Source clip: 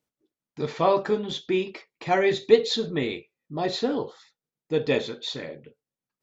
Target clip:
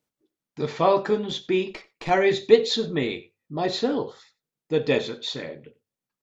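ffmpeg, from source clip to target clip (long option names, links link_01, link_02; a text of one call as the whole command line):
ffmpeg -i in.wav -filter_complex "[0:a]bandreject=frequency=50:width_type=h:width=6,bandreject=frequency=100:width_type=h:width=6,asettb=1/sr,asplit=3[link_01][link_02][link_03];[link_01]atrim=end=1.704[link_04];[link_02]atrim=start=1.7:end=2.1,asetpts=PTS-STARTPTS,afade=type=in:duration=0.004:curve=qsin,afade=type=out:start_time=0.396:duration=0.004:curve=qsin,aeval=exprs='0.112*(cos(1*acos(clip(val(0)/0.112,-1,1)))-cos(1*PI/2))+0.0251*(cos(4*acos(clip(val(0)/0.112,-1,1)))-cos(4*PI/2))':channel_layout=same[link_05];[link_03]atrim=start=2.096[link_06];[link_04][link_05]acrossfade=duration=0.004:curve1=hsin:curve2=qsin[link_07];[link_07][link_06]acrossfade=duration=0.004:curve1=qsin:curve2=hsin,aecho=1:1:92:0.0841,volume=1.5dB" out.wav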